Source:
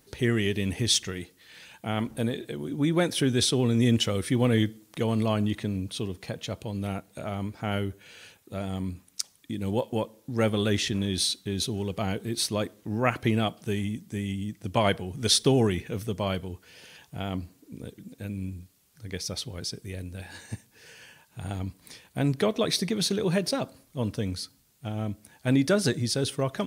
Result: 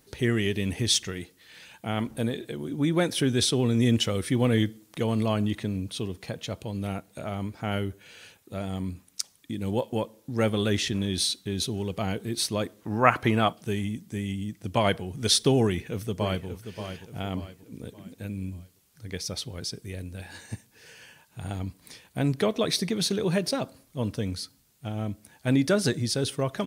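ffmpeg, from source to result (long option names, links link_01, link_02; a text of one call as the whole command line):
ffmpeg -i in.wav -filter_complex "[0:a]asettb=1/sr,asplit=3[link_01][link_02][link_03];[link_01]atrim=end=12.814[link_04];[link_02]atrim=start=12.81:end=13.53,asetpts=PTS-STARTPTS,afade=type=in:duration=0.004:curve=qsin,afade=type=out:start_time=0.716:duration=0.004:curve=qsin,equalizer=frequency=1100:width_type=o:width=1.5:gain=9.5[link_05];[link_03]atrim=start=13.526[link_06];[link_04][link_05]acrossfade=duration=0.004:curve1=hsin:curve2=qsin[link_07];[link_07][link_06]acrossfade=duration=0.004:curve1=qsin:curve2=hsin,asplit=2[link_08][link_09];[link_09]afade=type=in:start_time=15.62:duration=0.01,afade=type=out:start_time=16.47:duration=0.01,aecho=0:1:580|1160|1740|2320:0.354813|0.141925|0.0567701|0.0227081[link_10];[link_08][link_10]amix=inputs=2:normalize=0" out.wav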